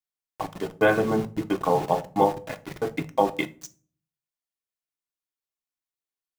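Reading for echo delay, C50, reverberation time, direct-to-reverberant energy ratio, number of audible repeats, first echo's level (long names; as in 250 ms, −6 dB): no echo audible, 19.5 dB, 0.45 s, 8.0 dB, no echo audible, no echo audible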